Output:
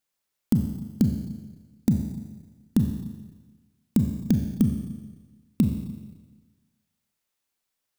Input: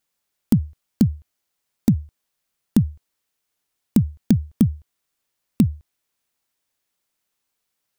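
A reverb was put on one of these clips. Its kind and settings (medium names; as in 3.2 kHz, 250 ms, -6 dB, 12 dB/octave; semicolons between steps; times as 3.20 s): Schroeder reverb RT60 1.3 s, combs from 29 ms, DRR 4.5 dB; trim -5 dB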